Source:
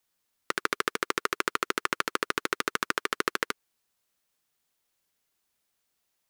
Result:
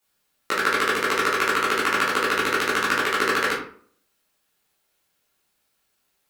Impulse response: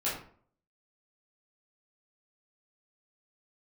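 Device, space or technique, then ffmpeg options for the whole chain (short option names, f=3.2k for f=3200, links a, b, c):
bathroom: -filter_complex "[1:a]atrim=start_sample=2205[a];[0:a][a]afir=irnorm=-1:irlink=0,volume=2dB"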